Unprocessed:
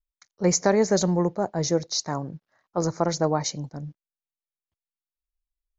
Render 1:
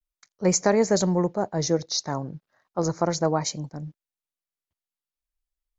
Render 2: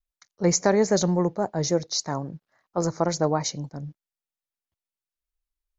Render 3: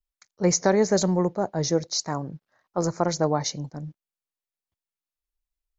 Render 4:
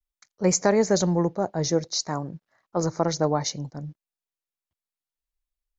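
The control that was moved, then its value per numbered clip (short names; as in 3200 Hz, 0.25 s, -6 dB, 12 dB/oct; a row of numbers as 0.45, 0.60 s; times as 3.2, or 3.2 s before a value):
vibrato, rate: 0.34, 3.6, 1.1, 0.53 Hz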